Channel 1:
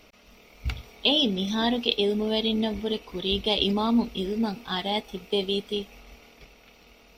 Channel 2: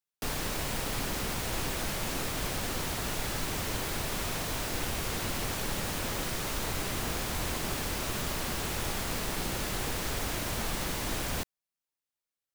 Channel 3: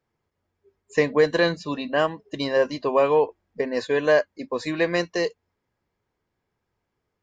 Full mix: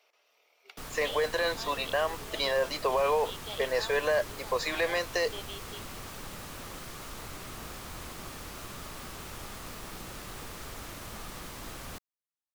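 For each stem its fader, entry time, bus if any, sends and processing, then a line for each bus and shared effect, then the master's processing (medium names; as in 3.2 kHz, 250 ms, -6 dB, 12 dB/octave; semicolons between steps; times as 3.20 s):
-15.5 dB, 0.00 s, bus A, no send, gain riding within 4 dB 2 s
-9.5 dB, 0.55 s, no bus, no send, peaking EQ 1.2 kHz +6 dB 0.29 oct; vibrato 4.5 Hz 75 cents
+2.5 dB, 0.00 s, bus A, no send, none
bus A: 0.0 dB, high-pass 490 Hz 24 dB/octave; peak limiter -19 dBFS, peak gain reduction 12 dB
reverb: none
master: none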